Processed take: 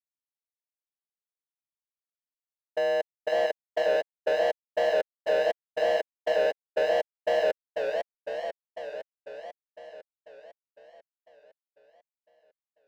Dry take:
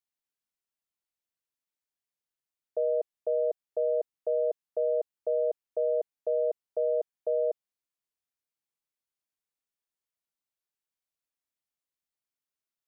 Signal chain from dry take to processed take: bell 620 Hz +8 dB 0.87 oct; level quantiser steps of 22 dB; sample leveller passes 1; limiter -25.5 dBFS, peak gain reduction 10 dB; sample leveller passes 2; warbling echo 0.5 s, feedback 63%, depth 212 cents, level -5 dB; gain +3 dB

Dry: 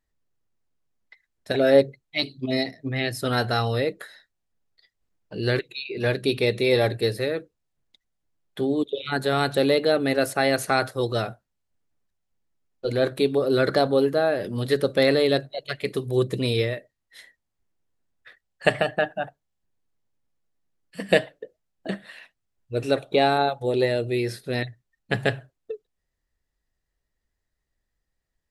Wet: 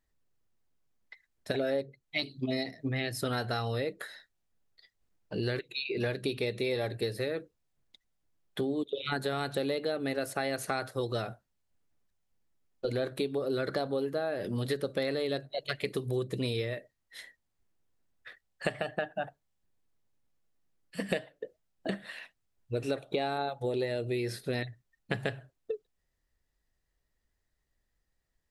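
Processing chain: compressor 6:1, threshold -29 dBFS, peak gain reduction 17 dB

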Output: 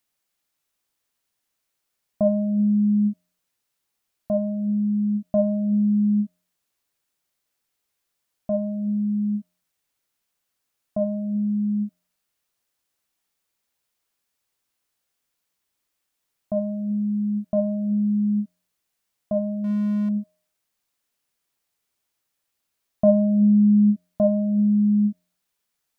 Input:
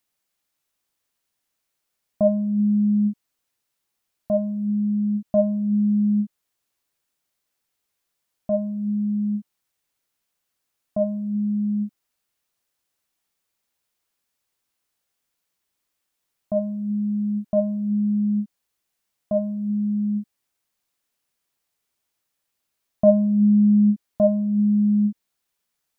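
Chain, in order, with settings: 19.64–20.09 power-law curve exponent 0.7; de-hum 88.7 Hz, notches 13

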